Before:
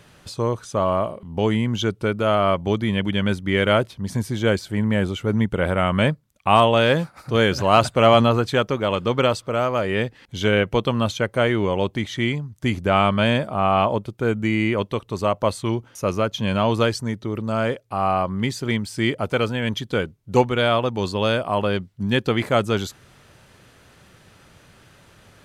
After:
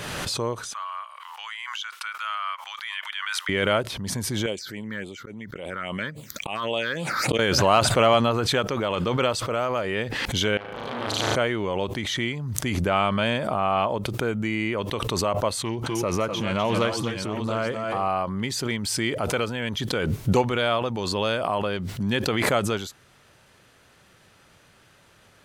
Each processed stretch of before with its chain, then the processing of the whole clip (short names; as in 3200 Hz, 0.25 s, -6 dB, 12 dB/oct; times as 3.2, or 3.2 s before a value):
0.73–3.49 steep high-pass 1100 Hz + high shelf 4700 Hz -7 dB
4.46–7.39 HPF 440 Hz 6 dB/oct + auto swell 0.328 s + phaser stages 6, 3.6 Hz, lowest notch 680–1600 Hz
10.57–11.36 level quantiser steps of 16 dB + flutter echo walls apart 6.4 m, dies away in 1.1 s + core saturation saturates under 1700 Hz
15.61–18.08 tapped delay 0.251/0.257/0.694 s -9.5/-12.5/-11 dB + Doppler distortion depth 0.13 ms
whole clip: low shelf 320 Hz -6 dB; backwards sustainer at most 22 dB/s; gain -3.5 dB